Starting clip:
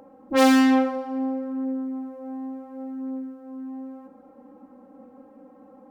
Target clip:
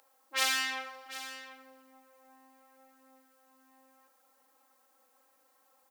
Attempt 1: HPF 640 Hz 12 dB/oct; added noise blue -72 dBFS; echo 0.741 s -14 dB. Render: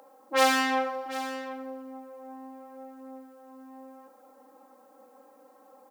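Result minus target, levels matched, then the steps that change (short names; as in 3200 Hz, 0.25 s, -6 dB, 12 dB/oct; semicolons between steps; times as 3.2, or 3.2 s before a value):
500 Hz band +14.0 dB
change: HPF 2100 Hz 12 dB/oct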